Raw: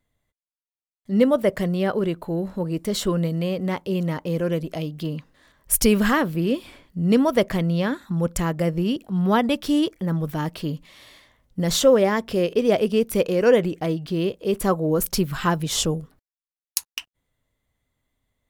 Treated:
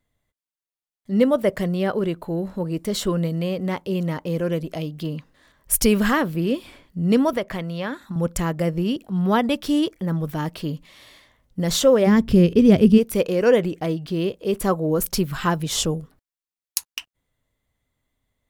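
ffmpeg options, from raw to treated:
-filter_complex "[0:a]asettb=1/sr,asplit=3[a][b][c];[a]atrim=end=7.334[d];[b]atrim=start=7.33:end=8.16,asetpts=PTS-STARTPTS,afade=t=in:d=0.004:c=qsin,afade=t=out:st=0.826:d=0.004:c=qsin,acrossover=split=560|3400[e][f][g];[e]acompressor=threshold=-29dB:ratio=4[h];[f]acompressor=threshold=-25dB:ratio=4[i];[g]acompressor=threshold=-47dB:ratio=4[j];[h][i][j]amix=inputs=3:normalize=0[k];[c]atrim=start=8.156[l];[d][k]acrossfade=d=0.004:c1=hsin:c2=qsin[m];[m][l]acrossfade=d=0.004:c1=qsin:c2=hsin,asplit=3[n][o][p];[n]afade=t=out:st=12.06:d=0.02[q];[o]asubboost=boost=10.5:cutoff=210,afade=t=in:st=12.06:d=0.02,afade=t=out:st=12.97:d=0.02[r];[p]afade=t=in:st=12.97:d=0.02[s];[q][r][s]amix=inputs=3:normalize=0"

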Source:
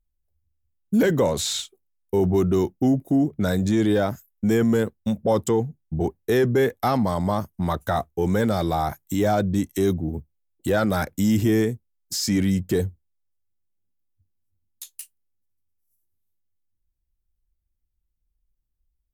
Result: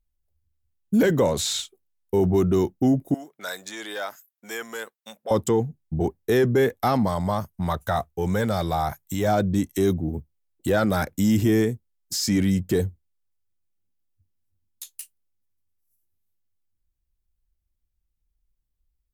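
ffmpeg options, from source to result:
-filter_complex "[0:a]asettb=1/sr,asplit=3[a][b][c];[a]atrim=end=3.144[d];[b]atrim=start=3.14:end=5.31,asetpts=PTS-STARTPTS,afade=t=in:d=0.004:c=qsin,afade=t=out:st=2.166:d=0.004:c=qsin,highpass=1k[e];[c]atrim=start=5.306[f];[d][e]acrossfade=d=0.004:c1=hsin:c2=qsin[g];[g][f]acrossfade=d=0.004:c1=qsin:c2=hsin,asettb=1/sr,asplit=3[h][i][j];[h]atrim=end=7.084[k];[i]atrim=start=7.08:end=9.28,asetpts=PTS-STARTPTS,afade=t=in:d=0.004:c=qsin,afade=t=out:st=2.196:d=0.004:c=qsin,equalizer=f=300:w=1.5:g=-7[l];[j]atrim=start=9.276[m];[k][l]acrossfade=d=0.004:c1=hsin:c2=qsin[n];[n][m]acrossfade=d=0.004:c1=qsin:c2=hsin"

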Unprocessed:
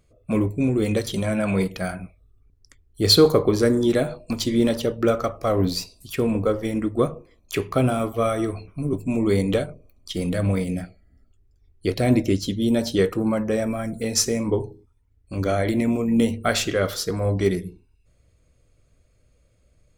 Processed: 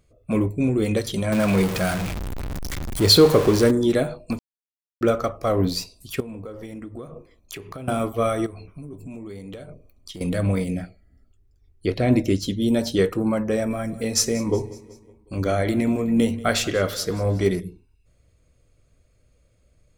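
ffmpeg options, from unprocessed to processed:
-filter_complex "[0:a]asettb=1/sr,asplit=3[a][b][c];[a]atrim=end=1.324[d];[b]atrim=start=1.32:end=3.71,asetpts=PTS-STARTPTS,afade=t=in:d=0.004:c=qsin,afade=t=out:st=2.386:d=0.004:c=qsin,aeval=exprs='val(0)+0.5*0.075*sgn(val(0))':c=same[e];[c]atrim=start=3.706[f];[d][e]acrossfade=d=0.004:c1=hsin:c2=qsin[g];[g][f]acrossfade=d=0.004:c1=qsin:c2=hsin,asettb=1/sr,asplit=3[h][i][j];[h]atrim=end=6.204[k];[i]atrim=start=6.2:end=7.88,asetpts=PTS-STARTPTS,afade=t=in:d=0.004:c=qsin,afade=t=out:st=1.676:d=0.004:c=qsin,acompressor=threshold=-32dB:ratio=12:attack=3.2:release=140:knee=1:detection=peak[l];[j]atrim=start=7.876[m];[k][l]acrossfade=d=0.004:c1=hsin:c2=qsin[n];[n][m]acrossfade=d=0.004:c1=qsin:c2=hsin,asettb=1/sr,asplit=3[o][p][q];[o]atrim=end=8.464[r];[p]atrim=start=8.46:end=10.21,asetpts=PTS-STARTPTS,afade=t=in:d=0.004:c=qsin,afade=t=out:st=1.746:d=0.004:c=qsin,acompressor=threshold=-34dB:ratio=8:attack=3.2:release=140:knee=1:detection=peak[s];[q]atrim=start=10.206[t];[r][s]acrossfade=d=0.004:c1=hsin:c2=qsin[u];[u][t]acrossfade=d=0.004:c1=qsin:c2=hsin,asettb=1/sr,asplit=3[v][w][x];[v]atrim=end=10.744[y];[w]atrim=start=10.74:end=12.16,asetpts=PTS-STARTPTS,afade=t=in:d=0.004:c=qsin,afade=t=out:st=1.416:d=0.004:c=qsin,acrossover=split=4600[z][aa];[aa]acompressor=threshold=-53dB:ratio=4:attack=1:release=60[ab];[z][ab]amix=inputs=2:normalize=0[ac];[x]atrim=start=12.156[ad];[y][ac]acrossfade=d=0.004:c1=hsin:c2=qsin[ae];[ae][ad]acrossfade=d=0.004:c1=qsin:c2=hsin,asettb=1/sr,asplit=3[af][ag][ah];[af]atrim=end=13.524[ai];[ag]atrim=start=13.52:end=17.6,asetpts=PTS-STARTPTS,afade=t=in:d=0.004:c=qsin,afade=t=out:st=4.076:d=0.004:c=qsin,aecho=1:1:186|372|558|744:0.106|0.0561|0.0298|0.0158,atrim=end_sample=179928[aj];[ah]atrim=start=17.596[ak];[ai][aj]acrossfade=d=0.004:c1=hsin:c2=qsin[al];[al][ak]acrossfade=d=0.004:c1=qsin:c2=hsin,asplit=3[am][an][ao];[am]atrim=end=4.39,asetpts=PTS-STARTPTS,afade=t=out:st=4.386:d=0.004:c=hsin[ap];[an]atrim=start=4.39:end=5.01,asetpts=PTS-STARTPTS,volume=0[aq];[ao]atrim=start=5.01,asetpts=PTS-STARTPTS,afade=t=in:d=0.004:c=hsin[ar];[ap][aq][ar]concat=n=3:v=0:a=1"

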